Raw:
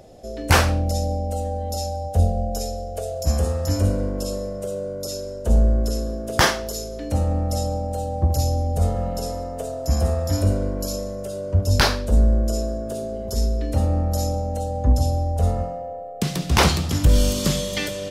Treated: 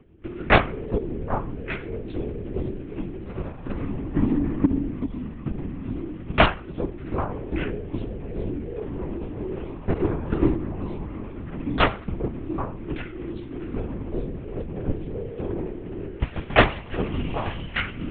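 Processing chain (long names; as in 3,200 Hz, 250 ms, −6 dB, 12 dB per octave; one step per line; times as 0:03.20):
0:09.54–0:10.97: ceiling on every frequency bin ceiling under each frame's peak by 13 dB
in parallel at −4 dB: bit-depth reduction 6 bits, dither none
0:04.15–0:04.65: on the sum: hollow resonant body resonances 250/630/1,400/2,100 Hz, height 13 dB, ringing for 20 ms
single-sideband voice off tune −310 Hz 230–3,100 Hz
wrap-around overflow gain 3 dB
chorus effect 0.62 Hz, delay 15.5 ms, depth 3.5 ms
on a send: echo through a band-pass that steps 391 ms, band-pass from 310 Hz, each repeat 1.4 octaves, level −1 dB
on the sum: transient designer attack +11 dB, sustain −1 dB
linear-prediction vocoder at 8 kHz whisper
level −5 dB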